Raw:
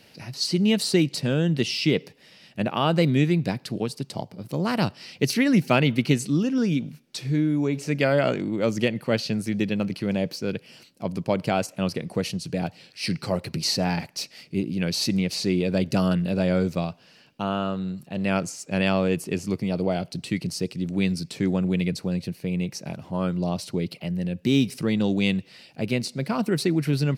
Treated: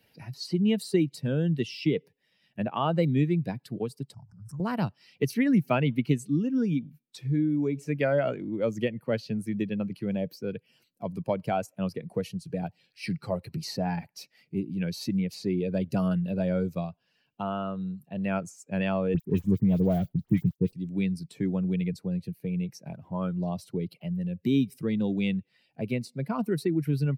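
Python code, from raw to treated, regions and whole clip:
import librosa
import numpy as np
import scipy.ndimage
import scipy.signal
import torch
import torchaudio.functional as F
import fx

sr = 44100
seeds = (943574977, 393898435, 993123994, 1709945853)

y = fx.chain(x, sr, fx.curve_eq(hz=(100.0, 240.0, 500.0, 1500.0, 2200.0, 3600.0, 5400.0, 8600.0, 13000.0), db=(0, -14, -28, -3, -22, -30, -2, -3, -23)),
    fx.pre_swell(db_per_s=62.0), at=(4.14, 4.6))
y = fx.chain(y, sr, fx.dead_time(dead_ms=0.15),
    fx.low_shelf(hz=250.0, db=12.0),
    fx.dispersion(late='highs', ms=59.0, hz=2700.0), at=(19.14, 20.73))
y = fx.bin_expand(y, sr, power=1.5)
y = fx.peak_eq(y, sr, hz=5300.0, db=-9.0, octaves=2.4)
y = fx.band_squash(y, sr, depth_pct=40)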